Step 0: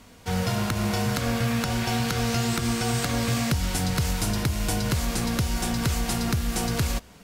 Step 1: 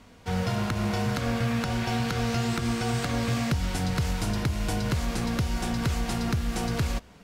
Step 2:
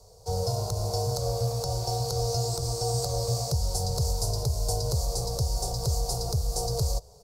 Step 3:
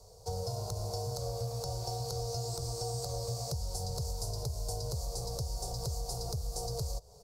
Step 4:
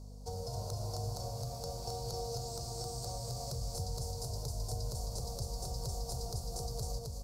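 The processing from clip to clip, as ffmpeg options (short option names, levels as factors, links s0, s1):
-af "lowpass=f=3900:p=1,volume=0.841"
-filter_complex "[0:a]acrossover=split=150|2700[s0][s1][s2];[s0]acontrast=53[s3];[s3][s1][s2]amix=inputs=3:normalize=0,firequalizer=gain_entry='entry(140,0);entry(250,-27);entry(420,9);entry(770,5);entry(1700,-25);entry(3100,-17);entry(4500,11)':delay=0.05:min_phase=1,volume=0.596"
-af "acompressor=threshold=0.0224:ratio=3,volume=0.794"
-af "aecho=1:1:264:0.708,aeval=exprs='val(0)+0.00708*(sin(2*PI*50*n/s)+sin(2*PI*2*50*n/s)/2+sin(2*PI*3*50*n/s)/3+sin(2*PI*4*50*n/s)/4+sin(2*PI*5*50*n/s)/5)':c=same,volume=0.596"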